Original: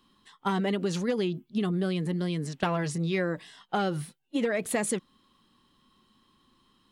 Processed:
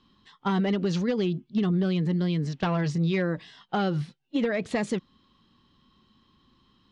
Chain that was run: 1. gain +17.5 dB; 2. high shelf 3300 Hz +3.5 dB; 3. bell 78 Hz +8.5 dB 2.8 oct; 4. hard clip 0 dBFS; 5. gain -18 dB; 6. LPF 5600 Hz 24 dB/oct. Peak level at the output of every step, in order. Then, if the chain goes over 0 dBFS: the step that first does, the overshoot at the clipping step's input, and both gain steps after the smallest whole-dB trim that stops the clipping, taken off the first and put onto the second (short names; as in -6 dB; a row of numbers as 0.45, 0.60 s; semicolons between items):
+5.5, +6.5, +9.0, 0.0, -18.0, -17.0 dBFS; step 1, 9.0 dB; step 1 +8.5 dB, step 5 -9 dB